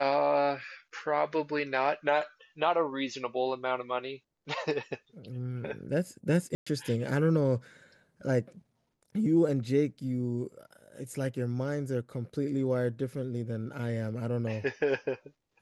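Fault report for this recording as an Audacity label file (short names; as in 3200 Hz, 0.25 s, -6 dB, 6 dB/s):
6.550000	6.670000	gap 0.115 s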